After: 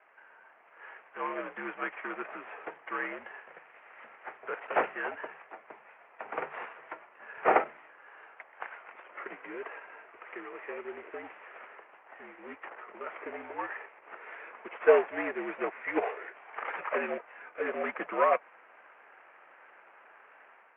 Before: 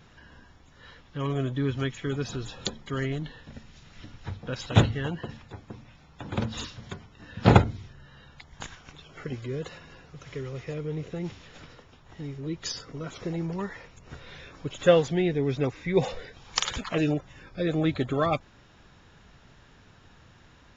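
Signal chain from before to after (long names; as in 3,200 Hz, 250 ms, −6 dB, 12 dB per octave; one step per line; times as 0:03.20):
variable-slope delta modulation 16 kbit/s
single-sideband voice off tune −71 Hz 580–2,400 Hz
automatic gain control gain up to 6.5 dB
level −2.5 dB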